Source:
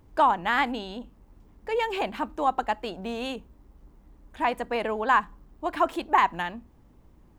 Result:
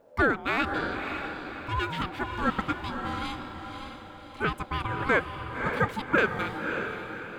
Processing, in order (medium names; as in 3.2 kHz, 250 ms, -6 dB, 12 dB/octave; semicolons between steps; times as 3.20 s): ring modulator 550 Hz; echo that smears into a reverb 568 ms, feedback 45%, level -6 dB